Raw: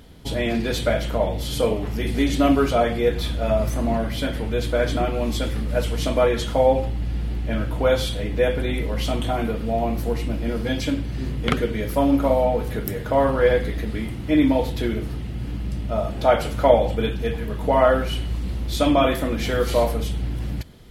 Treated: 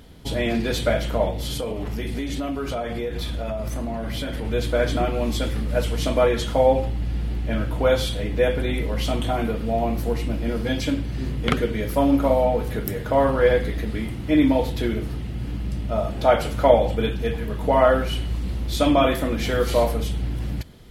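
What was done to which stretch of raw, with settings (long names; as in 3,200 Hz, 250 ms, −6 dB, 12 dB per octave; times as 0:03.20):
0:01.30–0:04.45: downward compressor 10 to 1, threshold −23 dBFS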